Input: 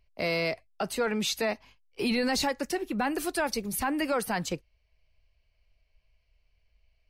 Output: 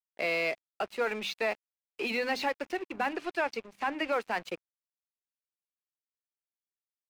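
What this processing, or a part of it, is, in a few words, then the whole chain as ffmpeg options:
pocket radio on a weak battery: -filter_complex "[0:a]highpass=350,lowpass=3.3k,bandreject=f=50:t=h:w=6,bandreject=f=100:t=h:w=6,bandreject=f=150:t=h:w=6,bandreject=f=200:t=h:w=6,bandreject=f=250:t=h:w=6,bandreject=f=300:t=h:w=6,aeval=exprs='sgn(val(0))*max(abs(val(0))-0.00531,0)':c=same,equalizer=f=2.5k:t=o:w=0.41:g=5.5,asettb=1/sr,asplit=3[a][b][c];[a]atrim=end=3.134[d];[b]atrim=start=3.13:end=4.12,asetpts=PTS-STARTPTS,afade=t=in:d=0.004:c=qsin,afade=t=out:st=0.986:d=0.004:c=qsin,highshelf=f=12k:g=-11[e];[c]atrim=start=4.116[f];[d][e]acrossfade=d=0.004:c1=hsin:c2=qsin[g];[g][f]acrossfade=d=0.004:c1=qsin:c2=hsin"

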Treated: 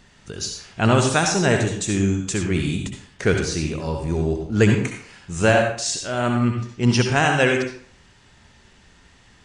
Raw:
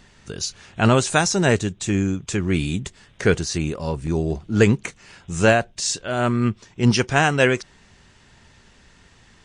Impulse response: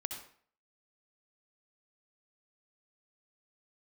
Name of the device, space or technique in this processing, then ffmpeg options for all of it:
bathroom: -filter_complex "[1:a]atrim=start_sample=2205[a];[0:a][a]afir=irnorm=-1:irlink=0,asettb=1/sr,asplit=3[b][c][d];[b]atrim=end=1.674[e];[c]atrim=start=1.67:end=2.43,asetpts=PTS-STARTPTS,afade=t=in:d=0.004:c=qsin,afade=t=out:st=0.756:d=0.004:c=qsin,highshelf=f=6.4k:g=8.5[f];[d]atrim=start=2.426[g];[e][f]acrossfade=d=0.004:c1=hsin:c2=qsin[h];[h][g]acrossfade=d=0.004:c1=qsin:c2=hsin"

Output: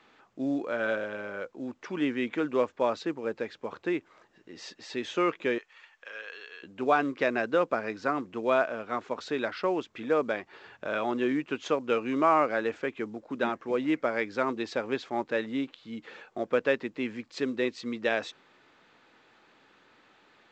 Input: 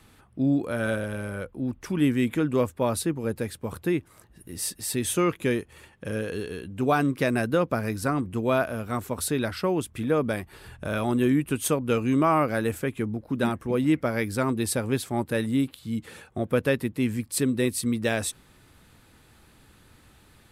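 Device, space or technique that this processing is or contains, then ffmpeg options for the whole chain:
telephone: -filter_complex "[0:a]asettb=1/sr,asplit=3[a][b][c];[a]atrim=end=5.584[d];[b]atrim=start=5.58:end=6.63,asetpts=PTS-STARTPTS,afade=t=in:d=0.004:c=qsin,afade=t=out:st=1.046:d=0.004:c=qsin,highpass=1.2k[e];[c]atrim=start=6.626[f];[d][e]acrossfade=d=0.004:c1=hsin:c2=qsin[g];[g][f]acrossfade=d=0.004:c1=qsin:c2=hsin,highpass=380,lowpass=3.3k" -ar 16000 -c:a pcm_mulaw

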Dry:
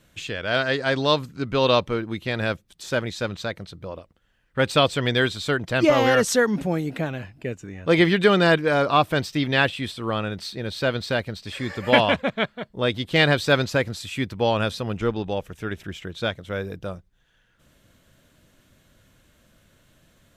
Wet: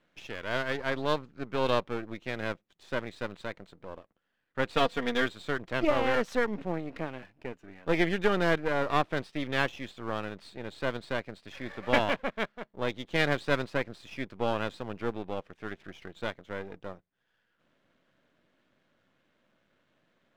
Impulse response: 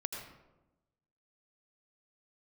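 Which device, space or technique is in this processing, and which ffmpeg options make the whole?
crystal radio: -filter_complex "[0:a]asettb=1/sr,asplit=3[a][b][c];[a]atrim=end=4.724[d];[b]atrim=start=4.72:end=5.26,asetpts=PTS-STARTPTS,afade=t=in:d=0.004:c=qsin,afade=t=out:st=0.536:d=0.004:c=qsin,aecho=1:1:4.3:0.73,atrim=end_sample=23814[e];[c]atrim=start=5.256[f];[d][e]acrossfade=d=0.004:c1=hsin:c2=qsin[g];[g][f]acrossfade=d=0.004:c1=qsin:c2=hsin,highpass=220,lowpass=2.7k,aeval=exprs='if(lt(val(0),0),0.251*val(0),val(0))':c=same,volume=-5dB"

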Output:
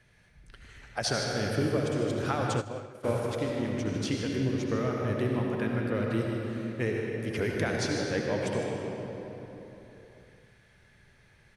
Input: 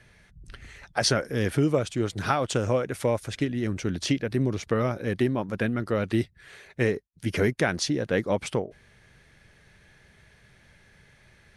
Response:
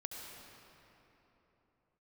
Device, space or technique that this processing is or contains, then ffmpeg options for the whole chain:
cave: -filter_complex "[0:a]aecho=1:1:153:0.299[a];[1:a]atrim=start_sample=2205[b];[a][b]afir=irnorm=-1:irlink=0,asplit=3[c][d][e];[c]afade=t=out:st=2.6:d=0.02[f];[d]agate=range=-33dB:threshold=-16dB:ratio=3:detection=peak,afade=t=in:st=2.6:d=0.02,afade=t=out:st=3.03:d=0.02[g];[e]afade=t=in:st=3.03:d=0.02[h];[f][g][h]amix=inputs=3:normalize=0,volume=-2.5dB"

